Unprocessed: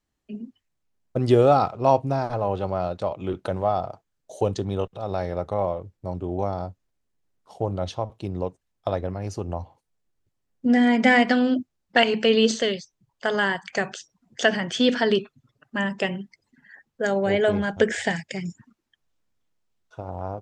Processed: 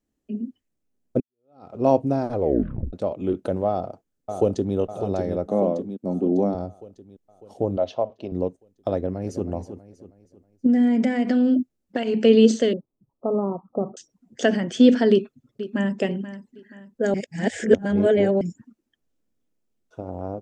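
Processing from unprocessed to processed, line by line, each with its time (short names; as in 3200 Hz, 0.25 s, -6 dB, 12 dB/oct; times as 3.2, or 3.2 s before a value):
1.2–1.75 fade in exponential
2.33 tape stop 0.60 s
3.68–4.76 echo throw 0.6 s, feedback 55%, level -7 dB
5.46–6.55 resonant high-pass 210 Hz, resonance Q 2.5
7.77–8.32 speaker cabinet 170–5400 Hz, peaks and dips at 180 Hz -9 dB, 310 Hz -9 dB, 640 Hz +9 dB, 1000 Hz +4 dB, 2800 Hz +5 dB
8.96–9.46 echo throw 0.32 s, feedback 40%, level -10.5 dB
10.66–12.23 compressor, threshold -22 dBFS
12.73–13.97 Chebyshev low-pass 1300 Hz, order 10
15.11–15.97 echo throw 0.48 s, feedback 40%, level -13.5 dB
17.14–18.41 reverse
whole clip: ten-band EQ 125 Hz -3 dB, 250 Hz +9 dB, 500 Hz +4 dB, 1000 Hz -6 dB, 2000 Hz -3 dB, 4000 Hz -5 dB; gain -1 dB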